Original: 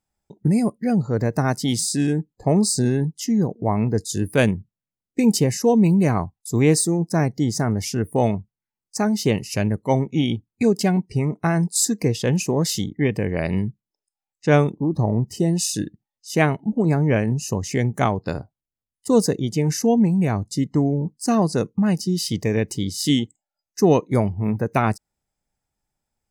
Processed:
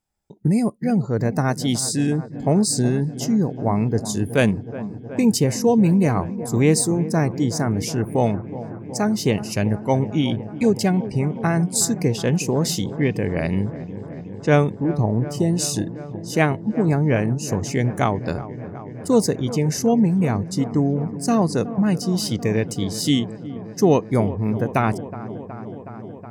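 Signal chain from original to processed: feedback echo behind a low-pass 369 ms, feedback 80%, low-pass 1.4 kHz, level -14.5 dB

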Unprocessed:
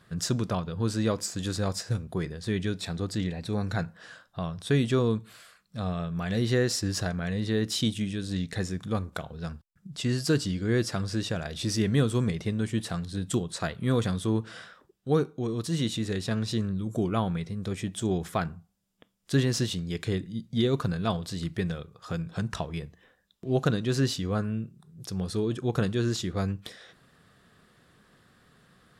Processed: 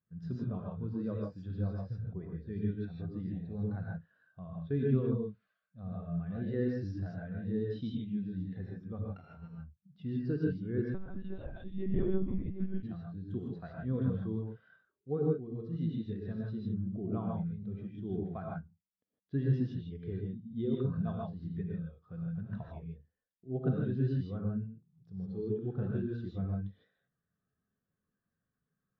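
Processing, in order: 9.08–9.48 s: sorted samples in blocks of 32 samples; distance through air 280 m; gated-style reverb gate 180 ms rising, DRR -2 dB; 10.94–12.83 s: monotone LPC vocoder at 8 kHz 190 Hz; spectral contrast expander 1.5:1; trim -8 dB

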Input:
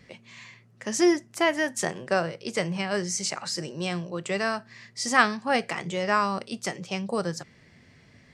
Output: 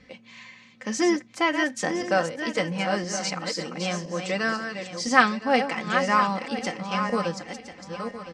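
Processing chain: backward echo that repeats 507 ms, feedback 51%, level -7.5 dB; low-pass 5.8 kHz 12 dB/octave; comb 3.9 ms, depth 63%

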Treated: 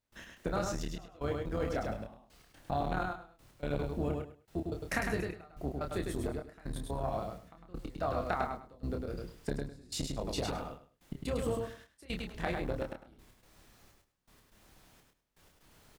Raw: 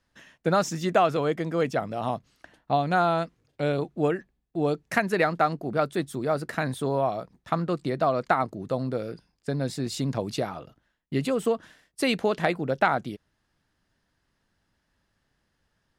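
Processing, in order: octave divider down 2 oct, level 0 dB; compression, threshold -31 dBFS, peak gain reduction 14.5 dB; added noise pink -64 dBFS; trance gate ".x.xxxx.." 124 bpm -24 dB; doubling 28 ms -5 dB; feedback delay 103 ms, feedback 20%, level -4 dB; transformer saturation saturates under 320 Hz

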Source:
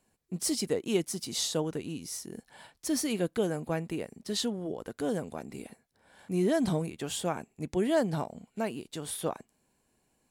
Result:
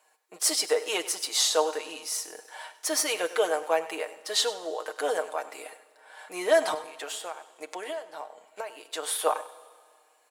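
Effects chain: high-pass 510 Hz 24 dB/octave; peaking EQ 1.2 kHz +5.5 dB 2 oct; comb 6.5 ms, depth 59%; 6.74–8.91 s: compression 12:1, threshold -39 dBFS, peak gain reduction 22 dB; delay 99 ms -16 dB; Schroeder reverb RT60 1.8 s, combs from 25 ms, DRR 16.5 dB; trim +5.5 dB

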